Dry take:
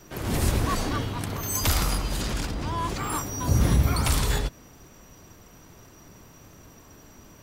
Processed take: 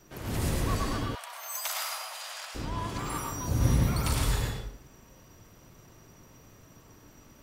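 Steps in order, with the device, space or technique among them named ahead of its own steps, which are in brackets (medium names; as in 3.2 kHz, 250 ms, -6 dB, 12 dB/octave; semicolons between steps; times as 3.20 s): bathroom (reverberation RT60 0.60 s, pre-delay 91 ms, DRR 0 dB); 1.15–2.55 s: elliptic high-pass 640 Hz, stop band 50 dB; trim -7.5 dB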